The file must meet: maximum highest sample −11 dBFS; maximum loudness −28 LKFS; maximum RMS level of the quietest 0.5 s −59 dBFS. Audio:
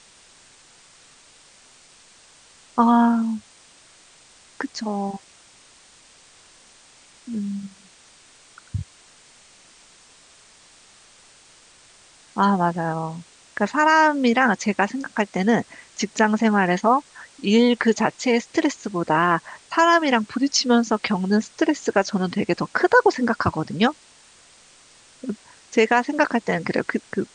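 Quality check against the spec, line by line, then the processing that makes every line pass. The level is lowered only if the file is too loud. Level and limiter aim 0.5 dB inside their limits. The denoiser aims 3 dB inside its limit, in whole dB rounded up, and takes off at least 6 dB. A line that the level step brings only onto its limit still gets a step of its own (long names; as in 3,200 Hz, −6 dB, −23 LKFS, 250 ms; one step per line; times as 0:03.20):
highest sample −5.0 dBFS: out of spec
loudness −21.0 LKFS: out of spec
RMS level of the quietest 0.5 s −52 dBFS: out of spec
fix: level −7.5 dB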